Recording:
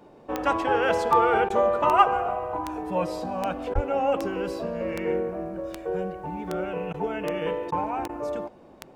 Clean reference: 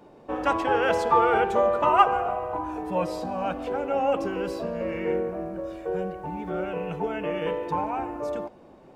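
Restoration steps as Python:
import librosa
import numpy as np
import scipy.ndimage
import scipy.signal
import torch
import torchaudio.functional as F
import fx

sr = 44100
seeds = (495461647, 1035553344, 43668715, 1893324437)

y = fx.fix_declick_ar(x, sr, threshold=10.0)
y = fx.fix_deplosive(y, sr, at_s=(3.74,))
y = fx.fix_interpolate(y, sr, at_s=(1.49, 3.74, 6.93, 7.71, 8.08), length_ms=10.0)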